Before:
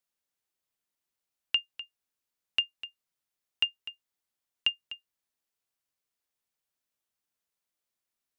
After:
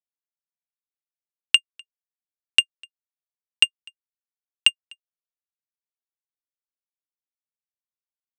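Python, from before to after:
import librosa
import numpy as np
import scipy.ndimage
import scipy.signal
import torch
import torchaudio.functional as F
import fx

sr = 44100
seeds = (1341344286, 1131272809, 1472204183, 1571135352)

y = fx.power_curve(x, sr, exponent=2.0)
y = fx.peak_eq(y, sr, hz=4500.0, db=9.0, octaves=2.7)
y = y * 10.0 ** (7.0 / 20.0)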